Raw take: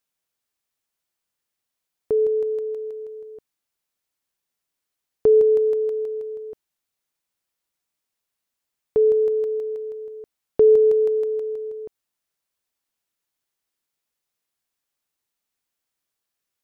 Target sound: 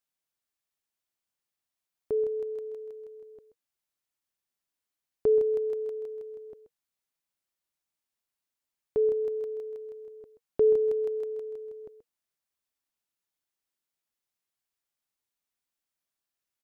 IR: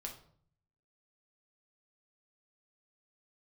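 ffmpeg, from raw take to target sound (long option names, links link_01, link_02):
-af "bandreject=frequency=470:width=12,aecho=1:1:130:0.237,volume=-6.5dB"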